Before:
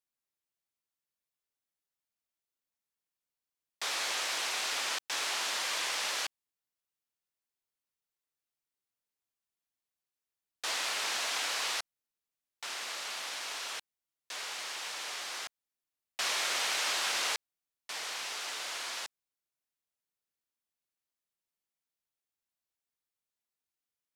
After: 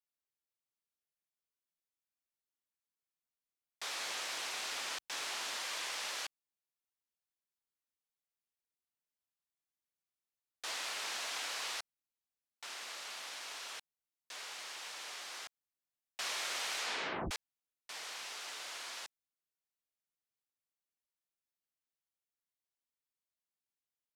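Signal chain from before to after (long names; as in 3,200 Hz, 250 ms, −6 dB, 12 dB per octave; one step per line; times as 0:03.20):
0:03.99–0:05.57: low-shelf EQ 140 Hz +10 dB
0:16.78: tape stop 0.53 s
level −6.5 dB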